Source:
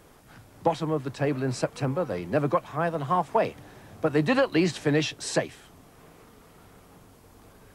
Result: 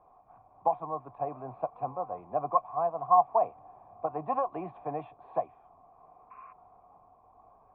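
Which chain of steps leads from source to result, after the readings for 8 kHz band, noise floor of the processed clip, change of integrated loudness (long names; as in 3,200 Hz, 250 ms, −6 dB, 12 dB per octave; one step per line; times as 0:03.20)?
below −40 dB, −61 dBFS, −4.5 dB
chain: sound drawn into the spectrogram noise, 0:06.30–0:06.53, 1,000–2,800 Hz −41 dBFS
formant resonators in series a
low-shelf EQ 92 Hz +6 dB
level +8 dB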